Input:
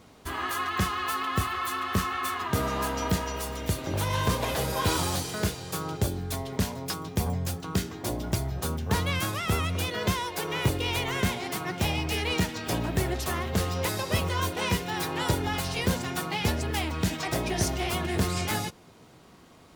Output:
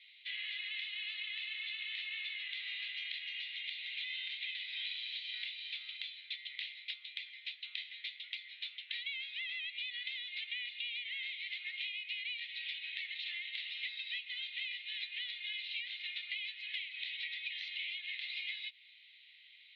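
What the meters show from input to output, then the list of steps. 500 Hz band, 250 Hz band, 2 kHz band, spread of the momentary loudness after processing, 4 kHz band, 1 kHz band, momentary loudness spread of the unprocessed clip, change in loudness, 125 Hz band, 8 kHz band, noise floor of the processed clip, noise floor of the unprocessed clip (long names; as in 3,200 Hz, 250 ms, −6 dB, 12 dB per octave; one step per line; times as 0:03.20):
below −40 dB, below −40 dB, −6.5 dB, 5 LU, −4.0 dB, below −40 dB, 4 LU, −11.0 dB, below −40 dB, below −40 dB, −60 dBFS, −53 dBFS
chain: Chebyshev band-pass filter 2,000–4,000 Hz, order 4
downward compressor 10 to 1, threshold −44 dBFS, peak gain reduction 15.5 dB
level +6 dB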